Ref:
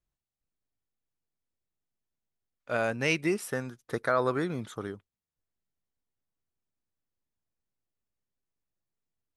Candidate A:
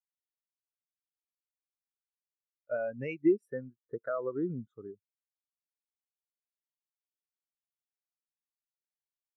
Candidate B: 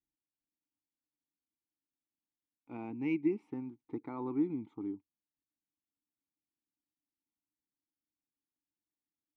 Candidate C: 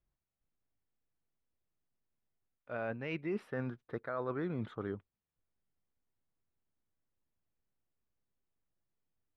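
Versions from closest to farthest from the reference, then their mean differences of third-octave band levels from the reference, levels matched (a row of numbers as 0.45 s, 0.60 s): C, B, A; 6.5 dB, 11.5 dB, 15.5 dB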